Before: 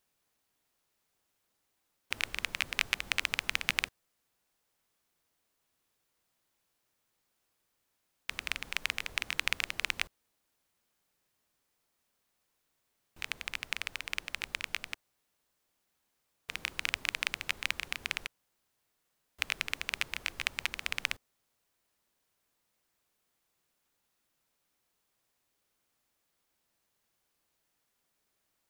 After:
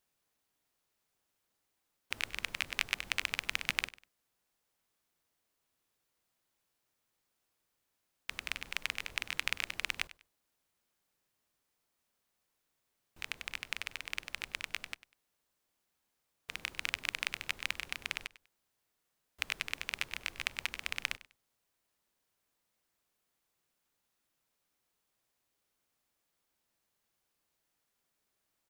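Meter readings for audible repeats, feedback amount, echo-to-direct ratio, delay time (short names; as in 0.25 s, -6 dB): 2, 25%, -17.5 dB, 98 ms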